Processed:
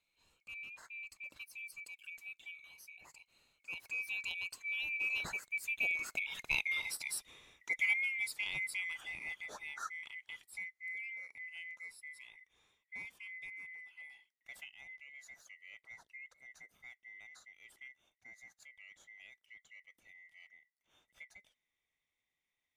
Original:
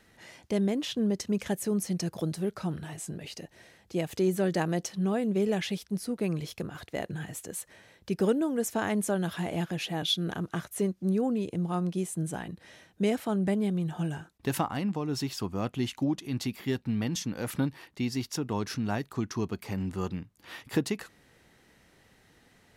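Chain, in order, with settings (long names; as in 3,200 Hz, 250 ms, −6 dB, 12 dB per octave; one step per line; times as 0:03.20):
neighbouring bands swapped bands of 2,000 Hz
source passing by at 0:06.67, 23 m/s, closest 13 metres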